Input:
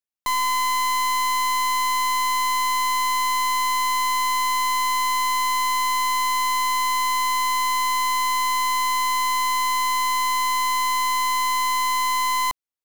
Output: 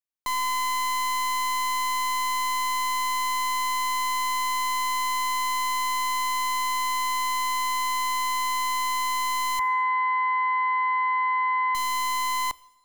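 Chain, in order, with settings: 9.59–11.75 speaker cabinet 260–2000 Hz, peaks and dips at 280 Hz -7 dB, 440 Hz +8 dB, 770 Hz +8 dB, 1300 Hz +5 dB, 1900 Hz +9 dB; two-slope reverb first 0.97 s, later 2.9 s, from -24 dB, DRR 19.5 dB; gain -4.5 dB

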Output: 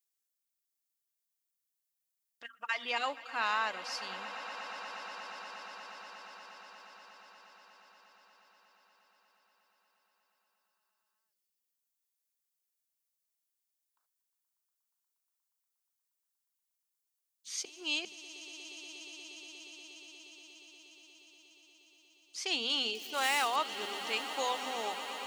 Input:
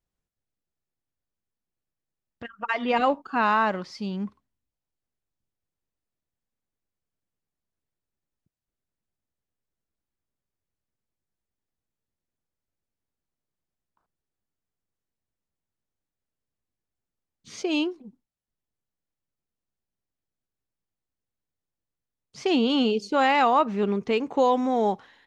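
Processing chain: 22.95–23.56 median filter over 9 samples; HPF 160 Hz; differentiator; notches 50/100/150/200/250 Hz; swelling echo 0.119 s, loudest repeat 8, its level -17 dB; 17.65–18.05 reverse; gain +6 dB

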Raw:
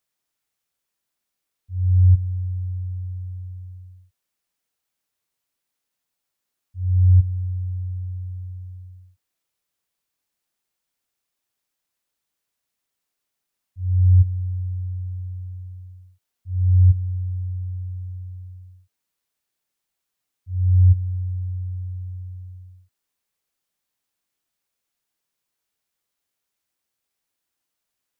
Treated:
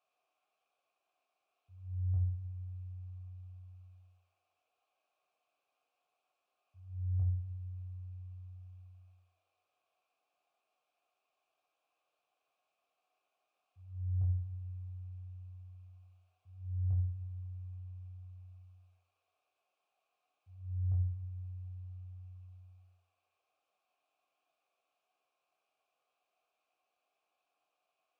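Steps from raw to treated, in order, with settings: vowel filter a; shoebox room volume 41 m³, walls mixed, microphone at 0.52 m; gain +13 dB

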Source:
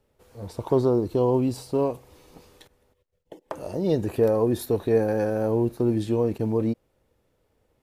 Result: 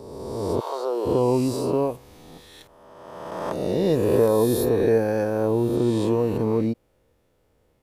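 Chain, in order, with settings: spectral swells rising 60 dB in 1.69 s; 0.59–1.05 HPF 870 Hz -> 350 Hz 24 dB/oct

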